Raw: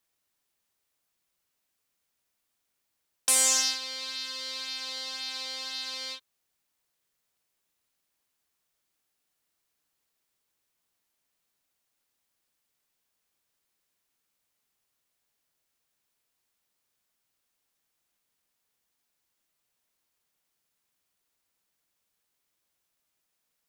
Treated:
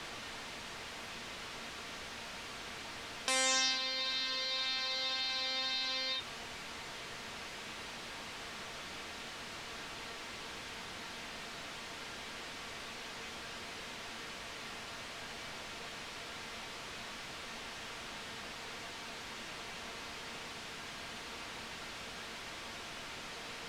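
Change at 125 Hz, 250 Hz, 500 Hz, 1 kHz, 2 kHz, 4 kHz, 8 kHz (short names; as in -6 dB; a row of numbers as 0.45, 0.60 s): n/a, +7.0 dB, +4.5 dB, +5.0 dB, +4.5 dB, -0.5 dB, -10.5 dB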